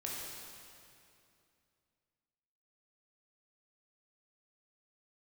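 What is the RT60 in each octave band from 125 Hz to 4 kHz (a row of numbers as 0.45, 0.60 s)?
3.0, 2.9, 2.7, 2.5, 2.4, 2.2 s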